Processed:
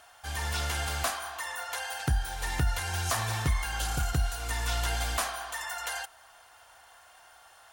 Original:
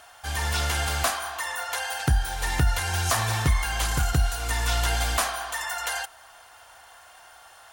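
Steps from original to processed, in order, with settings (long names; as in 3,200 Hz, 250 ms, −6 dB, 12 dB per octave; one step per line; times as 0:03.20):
healed spectral selection 0:03.75–0:03.98, 650–2,600 Hz
level −5.5 dB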